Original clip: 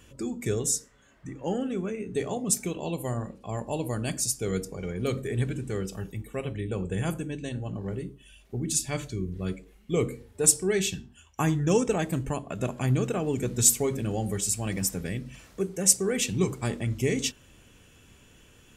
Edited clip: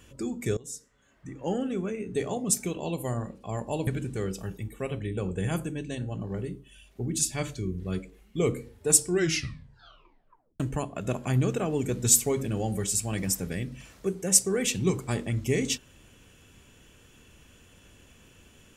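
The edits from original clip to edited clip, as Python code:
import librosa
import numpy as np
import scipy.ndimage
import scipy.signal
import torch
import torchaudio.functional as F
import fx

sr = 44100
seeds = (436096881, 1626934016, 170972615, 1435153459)

y = fx.edit(x, sr, fx.fade_in_from(start_s=0.57, length_s=0.92, floor_db=-21.5),
    fx.cut(start_s=3.87, length_s=1.54),
    fx.tape_stop(start_s=10.59, length_s=1.55), tone=tone)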